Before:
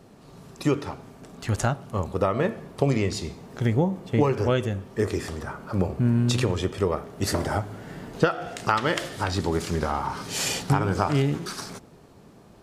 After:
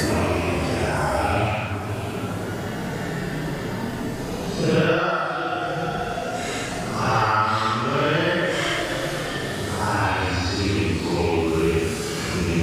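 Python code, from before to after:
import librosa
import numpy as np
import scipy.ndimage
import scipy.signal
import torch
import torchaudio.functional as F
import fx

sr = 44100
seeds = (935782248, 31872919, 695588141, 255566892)

p1 = fx.rattle_buzz(x, sr, strikes_db=-26.0, level_db=-21.0)
p2 = fx.paulstretch(p1, sr, seeds[0], factor=5.2, window_s=0.1, from_s=7.31)
p3 = p2 + fx.echo_stepped(p2, sr, ms=319, hz=1400.0, octaves=1.4, feedback_pct=70, wet_db=-11.5, dry=0)
p4 = fx.band_squash(p3, sr, depth_pct=70)
y = p4 * librosa.db_to_amplitude(3.0)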